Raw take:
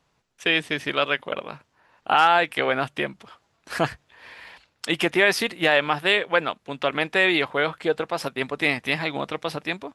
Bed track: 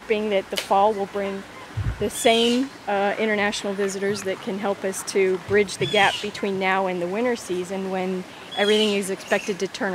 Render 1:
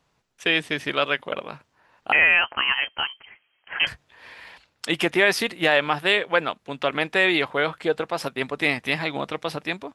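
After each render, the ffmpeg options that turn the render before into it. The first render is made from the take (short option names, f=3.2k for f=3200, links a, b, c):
-filter_complex "[0:a]asettb=1/sr,asplit=3[a][b][c];[a]atrim=end=2.124[d];[b]atrim=start=2.12:end=3.87,asetpts=PTS-STARTPTS,afade=t=in:d=0.004:c=qsin,afade=t=out:st=1.746:d=0.004:c=qsin,lowpass=f=2.8k:t=q:w=0.5098,lowpass=f=2.8k:t=q:w=0.6013,lowpass=f=2.8k:t=q:w=0.9,lowpass=f=2.8k:t=q:w=2.563,afreqshift=-3300[e];[c]atrim=start=3.866[f];[d][e]acrossfade=d=0.004:c1=hsin:c2=qsin[g];[g][f]acrossfade=d=0.004:c1=qsin:c2=hsin"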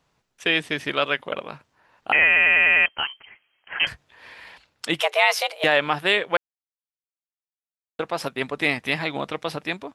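-filter_complex "[0:a]asettb=1/sr,asplit=3[a][b][c];[a]atrim=end=5.004[d];[b]atrim=start=5:end=5.64,asetpts=PTS-STARTPTS,afade=t=in:d=0.004:c=qsin,afade=t=out:st=0.636:d=0.004:c=qsin,afreqshift=290[e];[c]atrim=start=5.636[f];[d][e]acrossfade=d=0.004:c1=hsin:c2=qsin[g];[g][f]acrossfade=d=0.004:c1=qsin:c2=hsin,asplit=9[h][i][j][k][l][m][n][o][p];[h]atrim=end=2.362[q];[i]atrim=start=2.258:end=2.362[r];[j]atrim=start=2.258:end=2.362[s];[k]atrim=start=2.258:end=2.362[t];[l]atrim=start=2.258:end=2.362[u];[m]atrim=start=2.258:end=2.362[v];[n]atrim=start=2.858:end=6.37,asetpts=PTS-STARTPTS,afade=t=out:st=3.508:d=0.004:c=hsin[w];[o]atrim=start=6.37:end=7.99,asetpts=PTS-STARTPTS,volume=0[x];[p]atrim=start=7.99,asetpts=PTS-STARTPTS,afade=t=in:d=0.004:c=hsin[y];[q][r]acrossfade=d=0.004:c1=hsin:c2=hsin[z];[z][s]acrossfade=d=0.004:c1=hsin:c2=hsin[aa];[aa][t]acrossfade=d=0.004:c1=hsin:c2=hsin[ab];[ab][u]acrossfade=d=0.004:c1=hsin:c2=hsin[ac];[ac][v]acrossfade=d=0.004:c1=hsin:c2=hsin[ad];[w][x][y]concat=n=3:v=0:a=1[ae];[ad][ae]acrossfade=d=0.004:c1=hsin:c2=hsin"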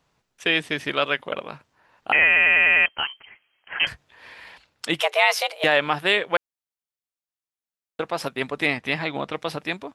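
-filter_complex "[0:a]asettb=1/sr,asplit=3[a][b][c];[a]atrim=end=8.664[d];[b]atrim=start=8.66:end=9.33,asetpts=PTS-STARTPTS,afade=t=in:d=0.004:c=qsin,afade=t=out:st=0.666:d=0.004:c=qsin,highshelf=f=7.7k:g=-10.5[e];[c]atrim=start=9.326[f];[d][e]acrossfade=d=0.004:c1=hsin:c2=qsin[g];[g][f]acrossfade=d=0.004:c1=qsin:c2=hsin"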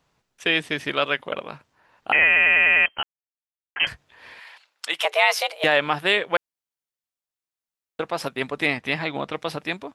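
-filter_complex "[0:a]asettb=1/sr,asplit=3[a][b][c];[a]atrim=end=4.394[d];[b]atrim=start=4.39:end=5.05,asetpts=PTS-STARTPTS,afade=t=in:d=0.004:c=qsin,afade=t=out:st=0.656:d=0.004:c=qsin,highpass=760[e];[c]atrim=start=5.046[f];[d][e]acrossfade=d=0.004:c1=hsin:c2=qsin[g];[g][f]acrossfade=d=0.004:c1=qsin:c2=hsin,asplit=3[h][i][j];[h]atrim=end=3.03,asetpts=PTS-STARTPTS,afade=t=out:st=3.026:d=0.004:c=hsin[k];[i]atrim=start=3.03:end=3.76,asetpts=PTS-STARTPTS,volume=0[l];[j]atrim=start=3.76,asetpts=PTS-STARTPTS,afade=t=in:d=0.004:c=hsin[m];[k][l][m]concat=n=3:v=0:a=1"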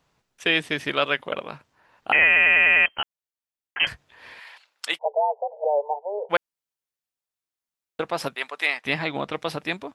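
-filter_complex "[0:a]asplit=3[a][b][c];[a]afade=t=out:st=4.97:d=0.02[d];[b]asuperpass=centerf=630:order=20:qfactor=1.2,afade=t=in:st=4.97:d=0.02,afade=t=out:st=6.29:d=0.02[e];[c]afade=t=in:st=6.29:d=0.02[f];[d][e][f]amix=inputs=3:normalize=0,asplit=3[g][h][i];[g]afade=t=out:st=8.34:d=0.02[j];[h]highpass=780,afade=t=in:st=8.34:d=0.02,afade=t=out:st=8.84:d=0.02[k];[i]afade=t=in:st=8.84:d=0.02[l];[j][k][l]amix=inputs=3:normalize=0"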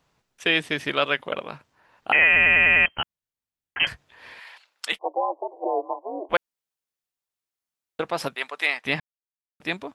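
-filter_complex "[0:a]asettb=1/sr,asplit=3[a][b][c];[a]atrim=end=2.334[d];[b]atrim=start=2.33:end=3.83,asetpts=PTS-STARTPTS,afade=t=in:d=0.004:c=qsin,afade=t=out:st=1.496:d=0.004:c=qsin,bass=f=250:g=11,treble=f=4k:g=-2[e];[c]atrim=start=3.826[f];[d][e]acrossfade=d=0.004:c1=hsin:c2=qsin[g];[g][f]acrossfade=d=0.004:c1=qsin:c2=hsin,asettb=1/sr,asplit=3[h][i][j];[h]atrim=end=4.924[k];[i]atrim=start=4.92:end=6.34,asetpts=PTS-STARTPTS,afade=t=in:d=0.004:c=qsin,afade=t=out:st=1.416:d=0.004:c=qsin,aeval=exprs='val(0)*sin(2*PI*130*n/s)':c=same[l];[j]atrim=start=6.336[m];[k][l]acrossfade=d=0.004:c1=hsin:c2=qsin[n];[n][m]acrossfade=d=0.004:c1=qsin:c2=hsin,asplit=3[o][p][q];[o]atrim=end=9,asetpts=PTS-STARTPTS,afade=t=out:st=8.996:d=0.004:c=hsin[r];[p]atrim=start=9:end=9.6,asetpts=PTS-STARTPTS,volume=0[s];[q]atrim=start=9.6,asetpts=PTS-STARTPTS,afade=t=in:d=0.004:c=hsin[t];[r][s][t]concat=n=3:v=0:a=1"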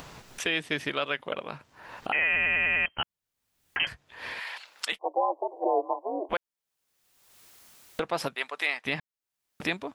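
-af "acompressor=mode=upward:threshold=-28dB:ratio=2.5,alimiter=limit=-15dB:level=0:latency=1:release=326"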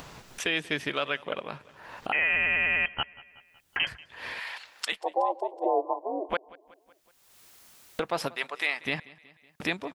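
-af "aecho=1:1:186|372|558|744:0.0794|0.0453|0.0258|0.0147"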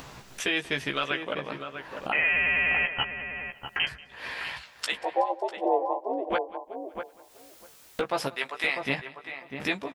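-filter_complex "[0:a]asplit=2[a][b];[b]adelay=15,volume=-5.5dB[c];[a][c]amix=inputs=2:normalize=0,asplit=2[d][e];[e]adelay=648,lowpass=f=1.3k:p=1,volume=-6dB,asplit=2[f][g];[g]adelay=648,lowpass=f=1.3k:p=1,volume=0.15,asplit=2[h][i];[i]adelay=648,lowpass=f=1.3k:p=1,volume=0.15[j];[f][h][j]amix=inputs=3:normalize=0[k];[d][k]amix=inputs=2:normalize=0"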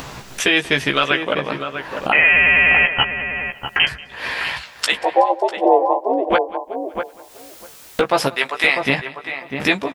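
-af "volume=11.5dB,alimiter=limit=-2dB:level=0:latency=1"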